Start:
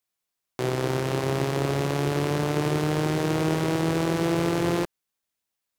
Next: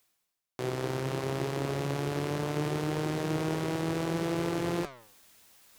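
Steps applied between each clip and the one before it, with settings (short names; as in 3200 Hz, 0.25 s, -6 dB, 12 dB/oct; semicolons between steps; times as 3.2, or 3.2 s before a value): flange 0.67 Hz, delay 1.9 ms, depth 9.5 ms, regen +84%; reverse; upward compressor, threshold -32 dBFS; reverse; gain -2 dB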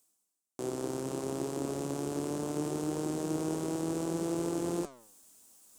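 graphic EQ 125/250/2000/4000/8000 Hz -8/+8/-10/-5/+11 dB; gain -4 dB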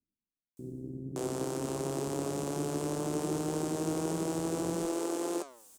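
bands offset in time lows, highs 0.57 s, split 280 Hz; gain +2.5 dB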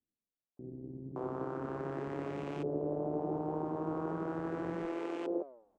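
LFO low-pass saw up 0.38 Hz 510–2600 Hz; gain -5 dB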